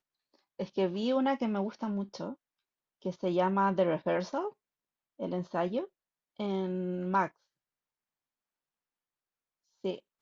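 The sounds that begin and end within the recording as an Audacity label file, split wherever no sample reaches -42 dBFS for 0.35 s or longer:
0.590000	2.330000	sound
3.050000	4.500000	sound
5.200000	5.850000	sound
6.390000	7.280000	sound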